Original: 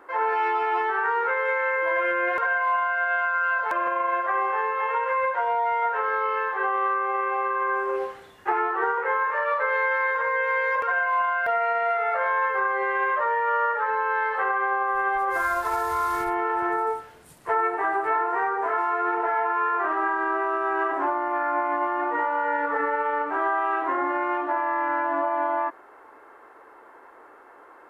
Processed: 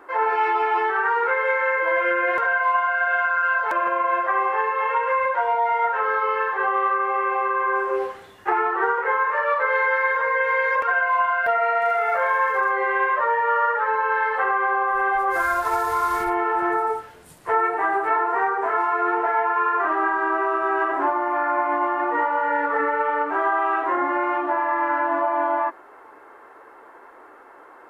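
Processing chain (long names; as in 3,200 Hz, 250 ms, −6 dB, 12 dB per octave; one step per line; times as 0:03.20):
0:11.80–0:12.70: surface crackle 530 per second −45 dBFS
flanger 0.55 Hz, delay 2.5 ms, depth 9.5 ms, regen −51%
level +7 dB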